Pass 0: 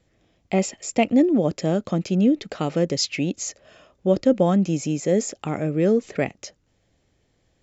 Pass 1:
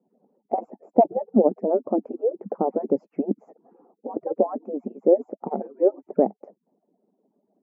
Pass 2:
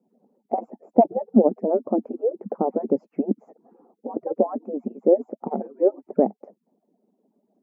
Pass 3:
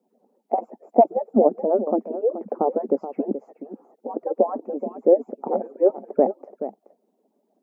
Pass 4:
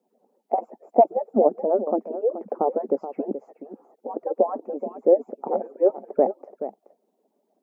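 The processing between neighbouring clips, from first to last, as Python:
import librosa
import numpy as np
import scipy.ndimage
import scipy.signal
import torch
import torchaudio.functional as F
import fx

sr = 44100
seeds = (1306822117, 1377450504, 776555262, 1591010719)

y1 = fx.hpss_only(x, sr, part='percussive')
y1 = scipy.signal.sosfilt(scipy.signal.ellip(3, 1.0, 60, [200.0, 850.0], 'bandpass', fs=sr, output='sos'), y1)
y1 = y1 * librosa.db_to_amplitude(6.0)
y2 = fx.peak_eq(y1, sr, hz=230.0, db=4.5, octaves=0.34)
y3 = scipy.signal.sosfilt(scipy.signal.bessel(2, 400.0, 'highpass', norm='mag', fs=sr, output='sos'), y2)
y3 = y3 + 10.0 ** (-11.5 / 20.0) * np.pad(y3, (int(427 * sr / 1000.0), 0))[:len(y3)]
y3 = y3 * librosa.db_to_amplitude(3.5)
y4 = fx.peak_eq(y3, sr, hz=230.0, db=-5.0, octaves=1.2)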